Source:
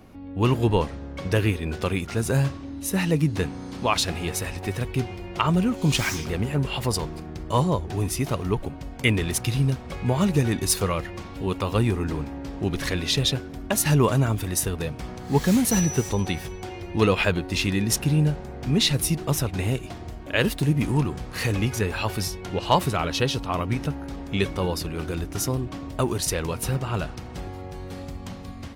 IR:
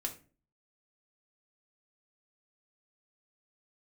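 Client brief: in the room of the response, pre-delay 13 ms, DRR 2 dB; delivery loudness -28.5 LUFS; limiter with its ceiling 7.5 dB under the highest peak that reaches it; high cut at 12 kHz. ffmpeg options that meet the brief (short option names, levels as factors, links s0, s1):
-filter_complex "[0:a]lowpass=12000,alimiter=limit=0.2:level=0:latency=1,asplit=2[s0][s1];[1:a]atrim=start_sample=2205,adelay=13[s2];[s1][s2]afir=irnorm=-1:irlink=0,volume=0.794[s3];[s0][s3]amix=inputs=2:normalize=0,volume=0.596"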